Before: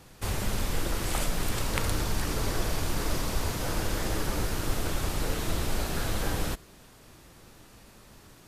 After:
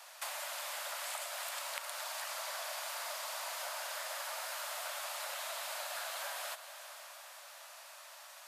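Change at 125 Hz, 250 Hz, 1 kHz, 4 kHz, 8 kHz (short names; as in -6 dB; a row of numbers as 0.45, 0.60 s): under -40 dB, under -40 dB, -5.5 dB, -5.0 dB, -5.5 dB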